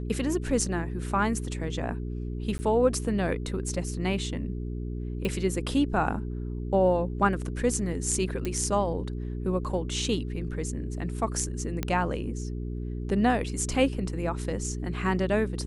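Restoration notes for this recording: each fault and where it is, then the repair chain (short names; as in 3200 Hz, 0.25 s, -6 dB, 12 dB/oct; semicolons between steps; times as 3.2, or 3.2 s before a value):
hum 60 Hz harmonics 7 -33 dBFS
2.58–2.59 gap 10 ms
5.25 pop -18 dBFS
8.45 pop -17 dBFS
11.83 pop -14 dBFS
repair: de-click; de-hum 60 Hz, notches 7; interpolate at 2.58, 10 ms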